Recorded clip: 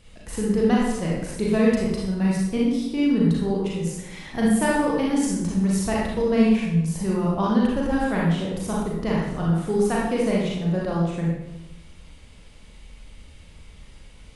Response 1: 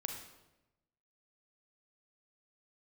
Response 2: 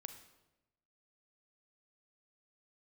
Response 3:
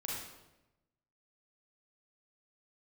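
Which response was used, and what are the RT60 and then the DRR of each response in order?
3; 1.0 s, 1.0 s, 1.0 s; 3.0 dB, 7.5 dB, -5.0 dB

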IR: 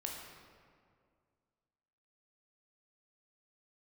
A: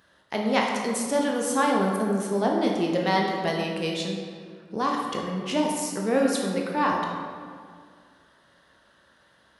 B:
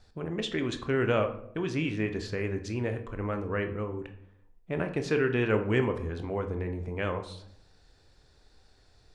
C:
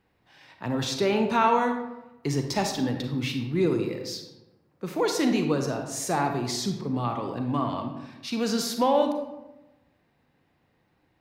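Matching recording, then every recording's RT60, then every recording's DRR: A; 2.1 s, 0.70 s, 1.0 s; -1.0 dB, 6.0 dB, 4.5 dB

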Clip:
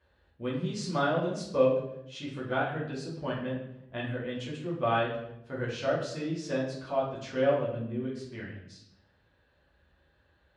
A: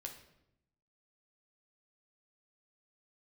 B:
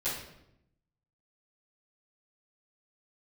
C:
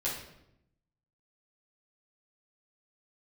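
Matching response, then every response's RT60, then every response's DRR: C; 0.80 s, 0.80 s, 0.80 s; 2.5 dB, -15.0 dB, -7.0 dB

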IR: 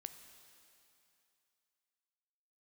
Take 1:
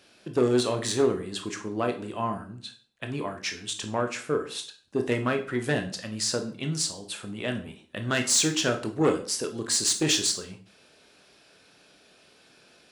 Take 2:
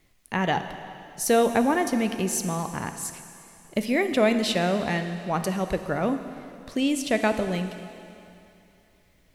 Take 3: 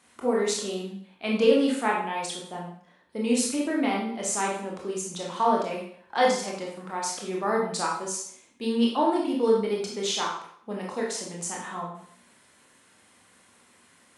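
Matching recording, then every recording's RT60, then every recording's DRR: 2; 0.45 s, 2.8 s, 0.60 s; 5.0 dB, 8.0 dB, -3.0 dB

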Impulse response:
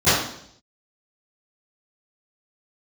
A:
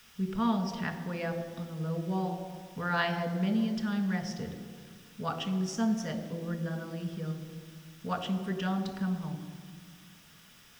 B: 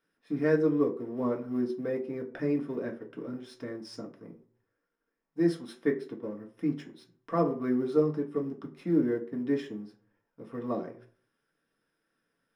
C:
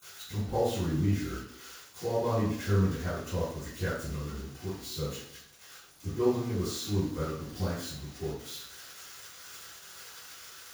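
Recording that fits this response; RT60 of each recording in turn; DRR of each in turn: C; 1.8 s, 0.50 s, 0.70 s; 4.5 dB, -0.5 dB, -24.0 dB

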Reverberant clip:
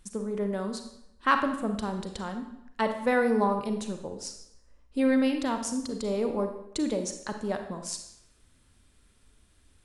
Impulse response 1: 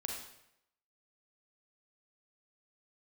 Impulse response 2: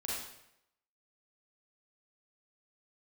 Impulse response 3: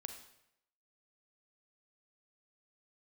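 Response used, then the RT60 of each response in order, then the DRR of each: 3; 0.80 s, 0.80 s, 0.80 s; 0.0 dB, -6.5 dB, 6.0 dB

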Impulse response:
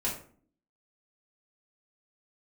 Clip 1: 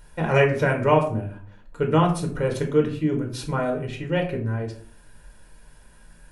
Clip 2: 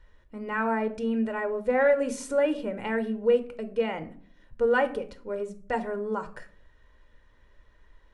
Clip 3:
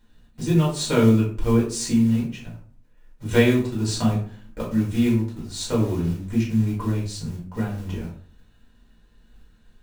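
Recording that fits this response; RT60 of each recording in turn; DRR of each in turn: 3; 0.50 s, 0.50 s, 0.50 s; 1.0 dB, 9.0 dB, -5.5 dB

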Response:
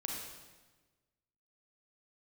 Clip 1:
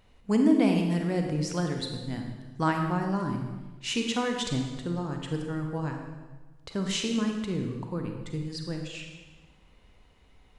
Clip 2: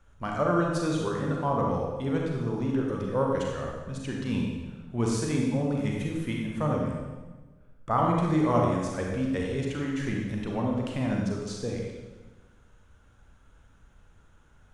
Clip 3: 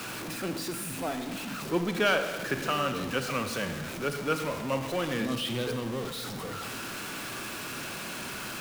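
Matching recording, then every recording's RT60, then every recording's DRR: 2; 1.3 s, 1.3 s, 1.3 s; 3.0 dB, -1.5 dB, 7.0 dB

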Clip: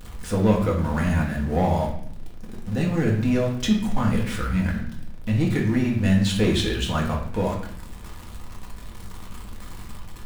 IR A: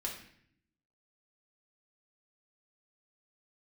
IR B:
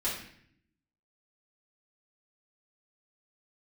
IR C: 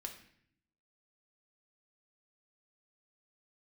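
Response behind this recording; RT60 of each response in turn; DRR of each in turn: A; 0.65 s, 0.65 s, 0.65 s; -2.0 dB, -9.0 dB, 3.0 dB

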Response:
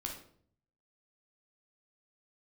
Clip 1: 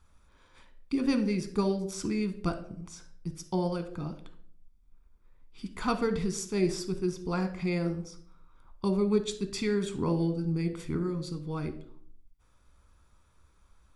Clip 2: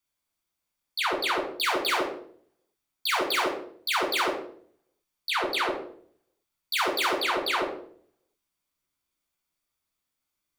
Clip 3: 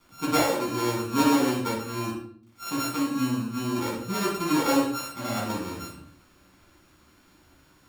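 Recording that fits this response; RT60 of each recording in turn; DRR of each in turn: 2; 0.55 s, 0.55 s, 0.55 s; 8.5 dB, 0.0 dB, -5.0 dB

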